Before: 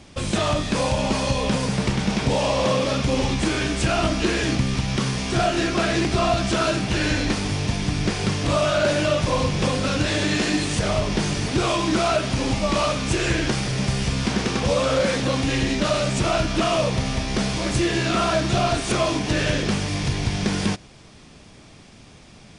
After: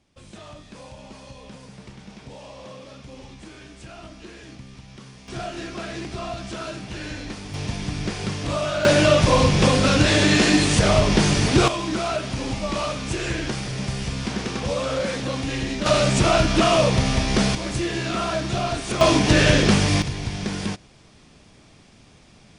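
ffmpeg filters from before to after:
ffmpeg -i in.wav -af "asetnsamples=nb_out_samples=441:pad=0,asendcmd='5.28 volume volume -11dB;7.54 volume volume -4.5dB;8.85 volume volume 5dB;11.68 volume volume -4.5dB;15.86 volume volume 3.5dB;17.55 volume volume -4dB;19.01 volume volume 6dB;20.02 volume volume -4.5dB',volume=-20dB" out.wav

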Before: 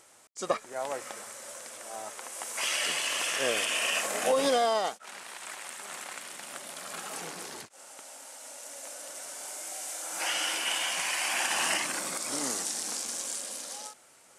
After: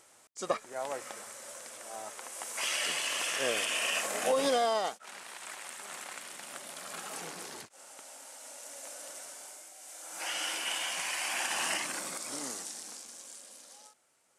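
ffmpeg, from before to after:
ffmpeg -i in.wav -af "volume=7dB,afade=type=out:start_time=9.09:duration=0.65:silence=0.281838,afade=type=in:start_time=9.74:duration=0.71:silence=0.334965,afade=type=out:start_time=11.99:duration=1.1:silence=0.354813" out.wav

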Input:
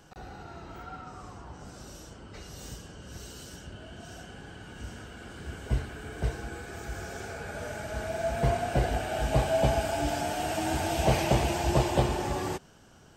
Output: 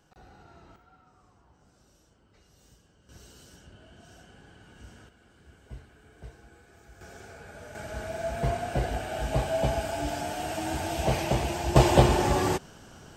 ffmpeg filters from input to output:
ffmpeg -i in.wav -af "asetnsamples=nb_out_samples=441:pad=0,asendcmd='0.76 volume volume -17dB;3.09 volume volume -8dB;5.09 volume volume -15.5dB;7.01 volume volume -8dB;7.75 volume volume -2dB;11.76 volume volume 6.5dB',volume=-9dB" out.wav

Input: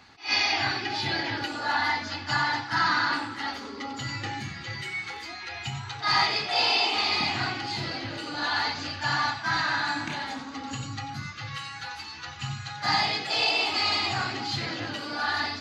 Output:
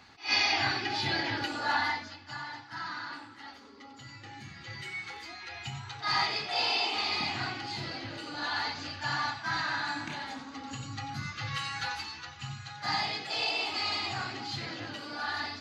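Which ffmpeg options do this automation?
ffmpeg -i in.wav -af "volume=15.5dB,afade=type=out:start_time=1.74:duration=0.43:silence=0.237137,afade=type=in:start_time=4.25:duration=0.63:silence=0.354813,afade=type=in:start_time=10.83:duration=1.02:silence=0.375837,afade=type=out:start_time=11.85:duration=0.45:silence=0.334965" out.wav

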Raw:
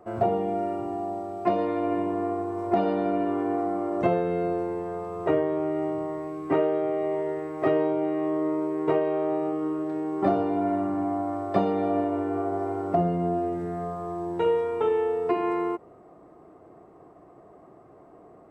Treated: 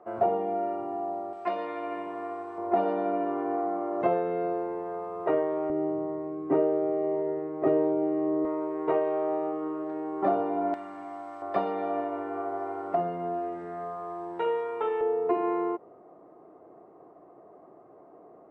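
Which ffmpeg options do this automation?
ffmpeg -i in.wav -af "asetnsamples=nb_out_samples=441:pad=0,asendcmd='1.33 bandpass f 1900;2.58 bandpass f 840;5.7 bandpass f 360;8.45 bandpass f 850;10.74 bandpass f 3200;11.42 bandpass f 1300;15.01 bandpass f 590',bandpass=frequency=850:width_type=q:width=0.64:csg=0" out.wav

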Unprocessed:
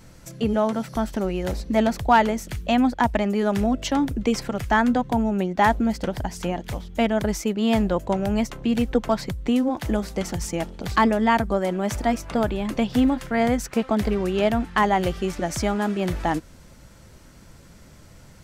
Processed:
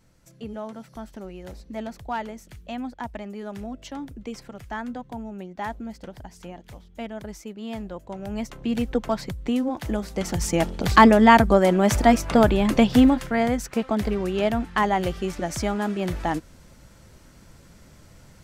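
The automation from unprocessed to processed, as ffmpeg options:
ffmpeg -i in.wav -af "volume=6dB,afade=type=in:start_time=8.11:duration=0.62:silence=0.316228,afade=type=in:start_time=10.1:duration=0.58:silence=0.354813,afade=type=out:start_time=12.78:duration=0.68:silence=0.398107" out.wav

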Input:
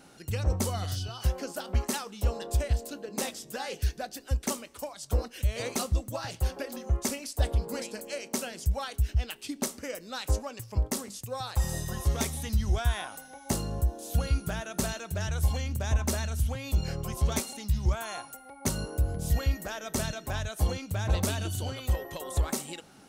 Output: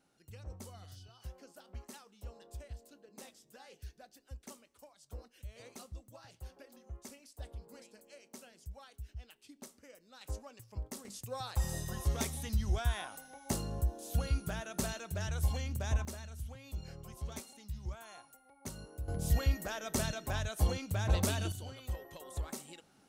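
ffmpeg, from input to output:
ffmpeg -i in.wav -af "asetnsamples=nb_out_samples=441:pad=0,asendcmd='10.21 volume volume -13.5dB;11.05 volume volume -5.5dB;16.05 volume volume -15dB;19.08 volume volume -3dB;21.52 volume volume -11.5dB',volume=-19.5dB" out.wav

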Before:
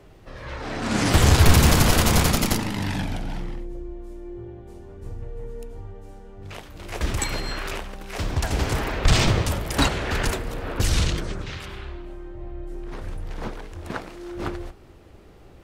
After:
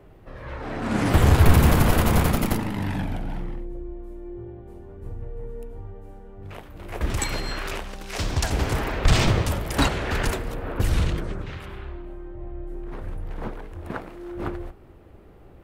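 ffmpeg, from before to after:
ffmpeg -i in.wav -af "asetnsamples=nb_out_samples=441:pad=0,asendcmd='7.1 equalizer g -1;7.87 equalizer g 5;8.5 equalizer g -3.5;10.55 equalizer g -12.5',equalizer=frequency=5700:width_type=o:width=1.9:gain=-12" out.wav

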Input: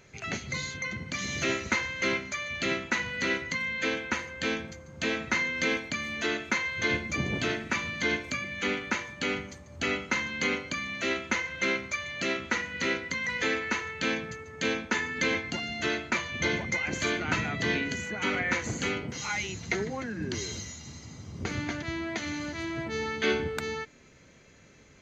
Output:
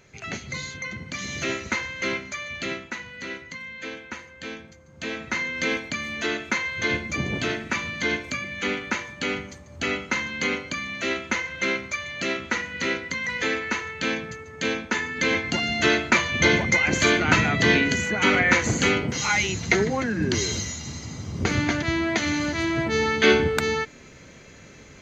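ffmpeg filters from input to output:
ffmpeg -i in.wav -af "volume=16.5dB,afade=type=out:start_time=2.51:duration=0.47:silence=0.446684,afade=type=in:start_time=4.76:duration=1:silence=0.354813,afade=type=in:start_time=15.18:duration=0.51:silence=0.473151" out.wav

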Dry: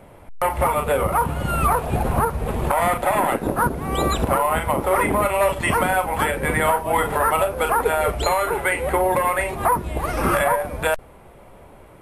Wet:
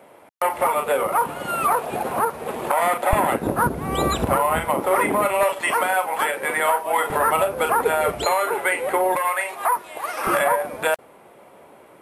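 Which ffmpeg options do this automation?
ffmpeg -i in.wav -af "asetnsamples=nb_out_samples=441:pad=0,asendcmd='3.13 highpass f 77;4.65 highpass f 200;5.43 highpass f 470;7.1 highpass f 140;8.25 highpass f 320;9.16 highpass f 740;10.27 highpass f 250',highpass=320" out.wav

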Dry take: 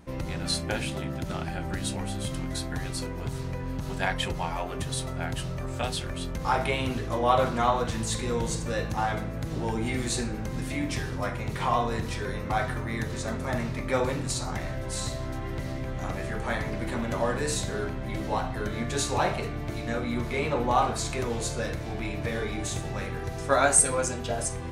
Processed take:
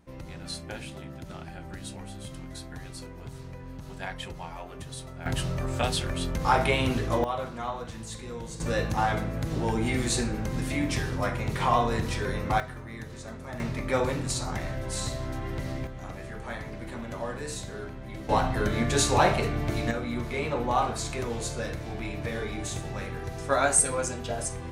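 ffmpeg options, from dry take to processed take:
ffmpeg -i in.wav -af "asetnsamples=nb_out_samples=441:pad=0,asendcmd='5.26 volume volume 3dB;7.24 volume volume -9.5dB;8.6 volume volume 2dB;12.6 volume volume -9dB;13.6 volume volume 0dB;15.87 volume volume -7dB;18.29 volume volume 4.5dB;19.91 volume volume -2dB',volume=-8.5dB" out.wav

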